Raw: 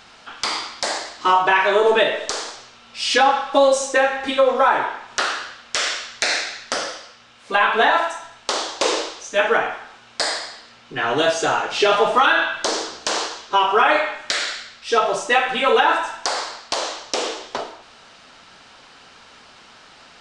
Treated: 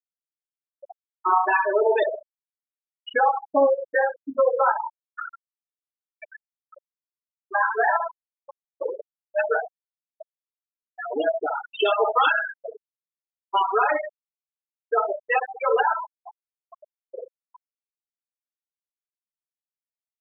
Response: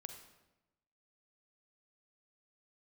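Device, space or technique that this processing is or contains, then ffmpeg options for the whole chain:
over-cleaned archive recording: -filter_complex "[0:a]asplit=2[a][b];[b]adelay=65,lowpass=f=1.3k:p=1,volume=-8dB,asplit=2[c][d];[d]adelay=65,lowpass=f=1.3k:p=1,volume=0.24,asplit=2[e][f];[f]adelay=65,lowpass=f=1.3k:p=1,volume=0.24[g];[a][c][e][g]amix=inputs=4:normalize=0,asettb=1/sr,asplit=3[h][i][j];[h]atrim=end=11.494[k];[i]atrim=start=11.49:end=12.3,asetpts=PTS-STARTPTS,afade=t=in:d=0.004:c=qsin,afade=t=out:st=0.806:d=0.004:c=qsin,adynamicequalizer=threshold=0.0251:dfrequency=3300:dqfactor=1.3:tfrequency=3300:tqfactor=1.3:attack=5:release=100:ratio=0.375:range=2.5:mode=boostabove:tftype=bell[l];[j]atrim=start=12.296[m];[k][l]acrossfade=d=0.004:c1=hsin:c2=qsin[n];[n][m]acrossfade=d=0.004:c1=qsin:c2=hsin,highpass=110,lowpass=6.4k,afwtdn=0.0398,afftfilt=real='re*gte(hypot(re,im),0.447)':imag='im*gte(hypot(re,im),0.447)':win_size=1024:overlap=0.75,volume=-4dB"

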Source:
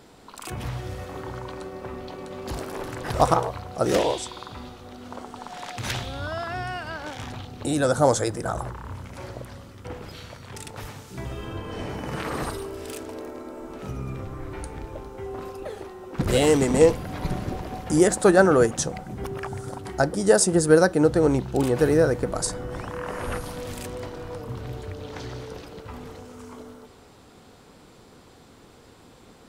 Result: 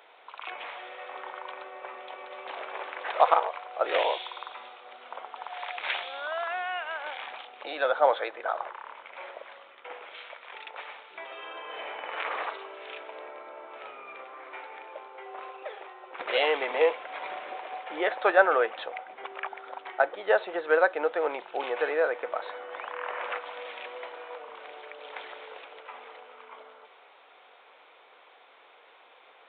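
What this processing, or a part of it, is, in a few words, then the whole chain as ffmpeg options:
musical greeting card: -af "aresample=8000,aresample=44100,highpass=f=570:w=0.5412,highpass=f=570:w=1.3066,equalizer=f=2.3k:t=o:w=0.33:g=6"

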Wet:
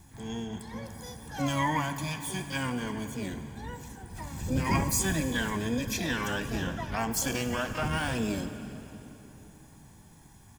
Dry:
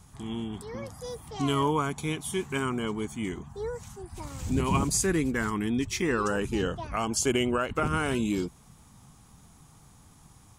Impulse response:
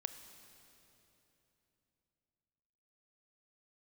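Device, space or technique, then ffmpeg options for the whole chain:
shimmer-style reverb: -filter_complex "[0:a]lowshelf=f=160:g=-2,aecho=1:1:1.2:0.96,asplit=2[a][b];[b]asetrate=88200,aresample=44100,atempo=0.5,volume=-6dB[c];[a][c]amix=inputs=2:normalize=0[d];[1:a]atrim=start_sample=2205[e];[d][e]afir=irnorm=-1:irlink=0,volume=-2.5dB"

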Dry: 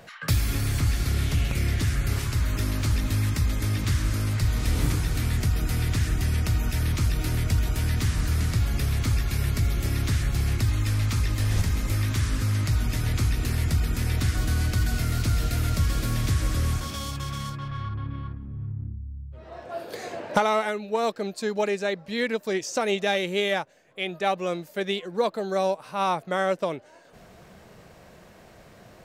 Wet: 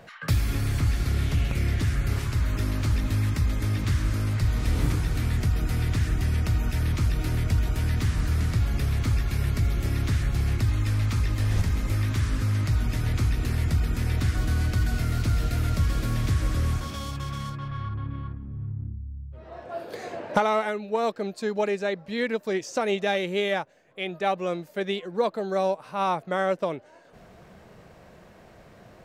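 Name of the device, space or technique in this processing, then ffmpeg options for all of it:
behind a face mask: -af "highshelf=f=3.5k:g=-7"

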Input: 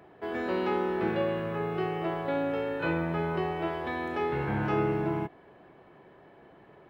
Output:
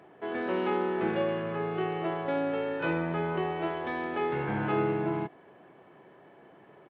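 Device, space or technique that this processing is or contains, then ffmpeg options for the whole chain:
Bluetooth headset: -af "highpass=130,aresample=8000,aresample=44100" -ar 32000 -c:a sbc -b:a 64k

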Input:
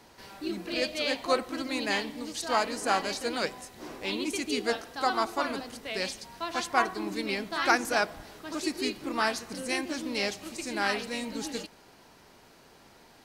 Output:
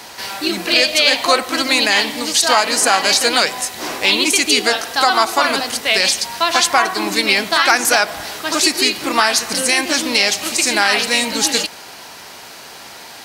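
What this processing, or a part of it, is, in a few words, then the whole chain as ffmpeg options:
mastering chain: -af "highpass=59,equalizer=f=720:t=o:w=0.84:g=3.5,acompressor=threshold=-31dB:ratio=1.5,tiltshelf=f=970:g=-7,asoftclip=type=hard:threshold=-14dB,alimiter=level_in=18.5dB:limit=-1dB:release=50:level=0:latency=1,volume=-1dB"

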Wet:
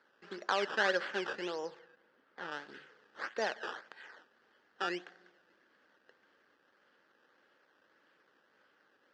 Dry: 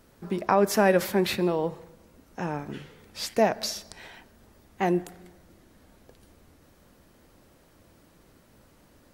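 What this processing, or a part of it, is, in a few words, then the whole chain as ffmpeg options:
circuit-bent sampling toy: -filter_complex "[0:a]acrusher=samples=14:mix=1:aa=0.000001:lfo=1:lforange=14:lforate=1.7,highpass=600,equalizer=f=680:t=q:w=4:g=-9,equalizer=f=980:t=q:w=4:g=-6,equalizer=f=1.6k:t=q:w=4:g=7,equalizer=f=2.3k:t=q:w=4:g=-7,equalizer=f=3.8k:t=q:w=4:g=-6,lowpass=f=4.6k:w=0.5412,lowpass=f=4.6k:w=1.3066,asettb=1/sr,asplit=3[a][b][c];[a]atrim=end=1.794[d];[b]atrim=start=1.79:end=2.52,asetpts=PTS-STARTPTS,afade=t=in:d=0.004:c=qsin,afade=t=out:st=0.726:d=0.004:c=qsin,lowpass=f=2.8k:p=1[e];[c]atrim=start=2.516[f];[d][e]acrossfade=d=0.004:c1=hsin:c2=qsin[g];[g][f]acrossfade=d=0.004:c1=qsin:c2=hsin,volume=-4.5dB"

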